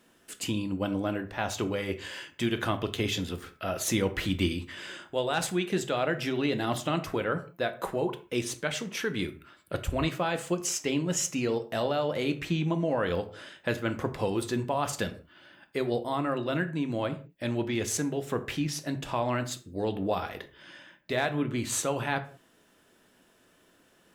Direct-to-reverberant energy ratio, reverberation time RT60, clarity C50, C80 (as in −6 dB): 8.0 dB, non-exponential decay, 14.5 dB, 19.0 dB